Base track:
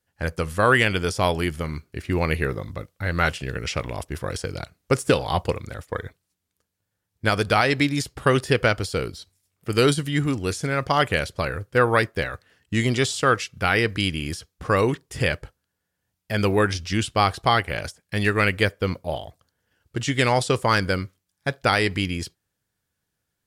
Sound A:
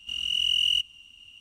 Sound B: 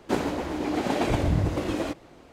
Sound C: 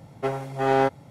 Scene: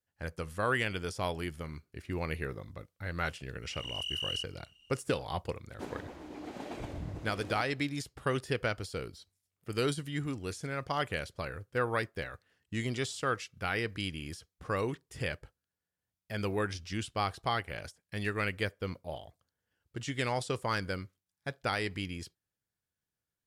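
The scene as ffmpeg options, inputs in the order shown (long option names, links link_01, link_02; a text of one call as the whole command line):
ffmpeg -i bed.wav -i cue0.wav -i cue1.wav -filter_complex "[0:a]volume=-12.5dB[link_01];[1:a]atrim=end=1.4,asetpts=PTS-STARTPTS,volume=-12.5dB,afade=type=in:duration=0.004:curve=hsin,afade=type=out:start_time=1.396:duration=0.004:curve=hsin,adelay=3620[link_02];[2:a]atrim=end=2.32,asetpts=PTS-STARTPTS,volume=-16.5dB,afade=type=in:duration=0.004:curve=hsin,afade=type=out:start_time=2.316:duration=0.004:curve=hsin,adelay=5700[link_03];[link_01][link_02][link_03]amix=inputs=3:normalize=0" out.wav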